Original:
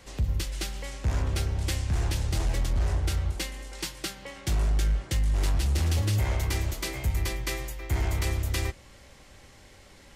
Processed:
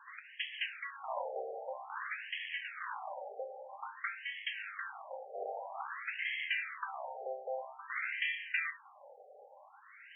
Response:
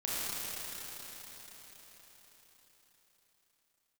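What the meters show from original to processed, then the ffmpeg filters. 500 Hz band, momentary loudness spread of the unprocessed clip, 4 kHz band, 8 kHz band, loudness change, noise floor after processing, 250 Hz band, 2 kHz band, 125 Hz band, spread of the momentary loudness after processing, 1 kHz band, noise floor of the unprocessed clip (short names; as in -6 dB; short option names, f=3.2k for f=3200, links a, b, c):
-4.0 dB, 9 LU, -7.5 dB, under -40 dB, -10.0 dB, -58 dBFS, under -30 dB, +1.5 dB, under -40 dB, 18 LU, -0.5 dB, -52 dBFS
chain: -filter_complex "[0:a]asplit=2[a][b];[1:a]atrim=start_sample=2205,afade=t=out:st=0.15:d=0.01,atrim=end_sample=7056[c];[b][c]afir=irnorm=-1:irlink=0,volume=-12.5dB[d];[a][d]amix=inputs=2:normalize=0,afftfilt=real='re*between(b*sr/1024,570*pow(2400/570,0.5+0.5*sin(2*PI*0.51*pts/sr))/1.41,570*pow(2400/570,0.5+0.5*sin(2*PI*0.51*pts/sr))*1.41)':imag='im*between(b*sr/1024,570*pow(2400/570,0.5+0.5*sin(2*PI*0.51*pts/sr))/1.41,570*pow(2400/570,0.5+0.5*sin(2*PI*0.51*pts/sr))*1.41)':win_size=1024:overlap=0.75,volume=3.5dB"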